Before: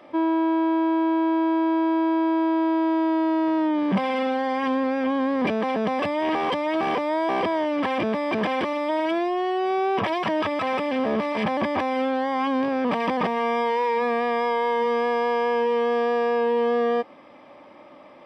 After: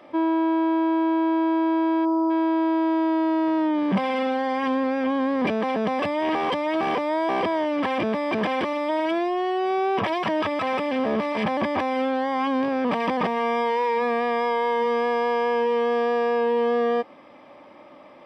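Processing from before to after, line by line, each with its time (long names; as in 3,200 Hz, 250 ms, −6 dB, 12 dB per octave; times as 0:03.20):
0:02.05–0:02.30: gain on a spectral selection 1,400–4,800 Hz −23 dB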